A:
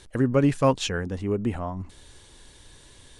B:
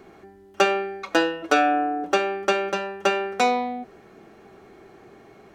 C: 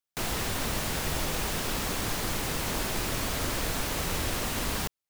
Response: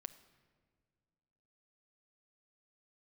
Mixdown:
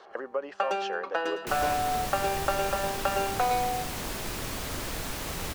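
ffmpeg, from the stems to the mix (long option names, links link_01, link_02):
-filter_complex "[0:a]alimiter=limit=-18dB:level=0:latency=1:release=381,volume=0.5dB,asplit=2[link_01][link_02];[1:a]volume=-1dB,asplit=3[link_03][link_04][link_05];[link_04]volume=-18.5dB[link_06];[link_05]volume=-14dB[link_07];[2:a]adelay=1300,volume=-4dB[link_08];[link_02]apad=whole_len=244574[link_09];[link_03][link_09]sidechaincompress=threshold=-27dB:ratio=8:attack=16:release=638[link_10];[link_01][link_10]amix=inputs=2:normalize=0,highpass=frequency=480:width=0.5412,highpass=frequency=480:width=1.3066,equalizer=frequency=550:width_type=q:width=4:gain=5,equalizer=frequency=790:width_type=q:width=4:gain=4,equalizer=frequency=1200:width_type=q:width=4:gain=4,equalizer=frequency=2300:width_type=q:width=4:gain=-9,equalizer=frequency=3700:width_type=q:width=4:gain=-9,lowpass=frequency=4500:width=0.5412,lowpass=frequency=4500:width=1.3066,acompressor=threshold=-26dB:ratio=4,volume=0dB[link_11];[3:a]atrim=start_sample=2205[link_12];[link_06][link_12]afir=irnorm=-1:irlink=0[link_13];[link_07]aecho=0:1:108|216|324|432:1|0.29|0.0841|0.0244[link_14];[link_08][link_11][link_13][link_14]amix=inputs=4:normalize=0"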